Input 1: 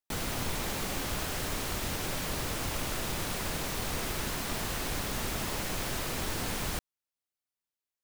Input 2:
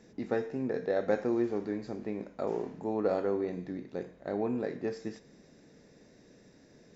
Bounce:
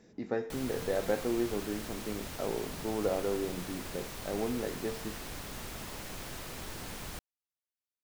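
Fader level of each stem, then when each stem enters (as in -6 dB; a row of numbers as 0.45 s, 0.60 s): -8.5 dB, -2.0 dB; 0.40 s, 0.00 s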